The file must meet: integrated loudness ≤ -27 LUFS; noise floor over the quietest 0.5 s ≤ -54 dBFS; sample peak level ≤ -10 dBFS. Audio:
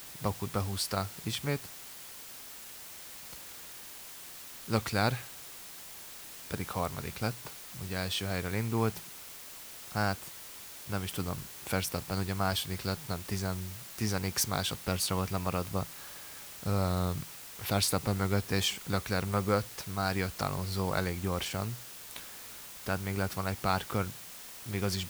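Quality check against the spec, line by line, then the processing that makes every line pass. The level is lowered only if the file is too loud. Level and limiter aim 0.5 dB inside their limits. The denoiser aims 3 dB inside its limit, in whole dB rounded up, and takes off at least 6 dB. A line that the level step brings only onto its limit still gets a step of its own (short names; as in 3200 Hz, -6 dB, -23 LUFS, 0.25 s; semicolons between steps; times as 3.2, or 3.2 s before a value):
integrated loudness -34.5 LUFS: OK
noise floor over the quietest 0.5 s -47 dBFS: fail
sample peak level -13.5 dBFS: OK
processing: denoiser 10 dB, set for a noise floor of -47 dBFS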